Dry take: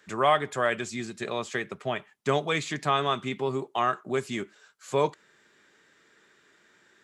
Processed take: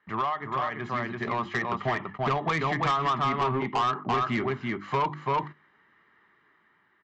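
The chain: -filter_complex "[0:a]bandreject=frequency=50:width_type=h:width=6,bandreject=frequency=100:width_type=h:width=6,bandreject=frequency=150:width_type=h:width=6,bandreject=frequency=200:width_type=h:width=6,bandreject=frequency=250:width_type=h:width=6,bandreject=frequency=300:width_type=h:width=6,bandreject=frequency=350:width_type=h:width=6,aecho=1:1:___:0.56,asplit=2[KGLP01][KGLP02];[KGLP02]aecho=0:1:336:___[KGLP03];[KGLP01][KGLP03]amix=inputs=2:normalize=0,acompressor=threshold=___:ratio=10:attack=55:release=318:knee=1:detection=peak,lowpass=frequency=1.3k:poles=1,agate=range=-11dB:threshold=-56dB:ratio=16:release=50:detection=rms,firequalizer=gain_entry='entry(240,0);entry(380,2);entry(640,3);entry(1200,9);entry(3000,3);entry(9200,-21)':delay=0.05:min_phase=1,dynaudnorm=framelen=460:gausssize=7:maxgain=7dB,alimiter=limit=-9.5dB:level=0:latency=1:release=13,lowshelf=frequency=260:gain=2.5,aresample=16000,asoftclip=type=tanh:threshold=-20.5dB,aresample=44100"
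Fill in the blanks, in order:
1, 0.501, -31dB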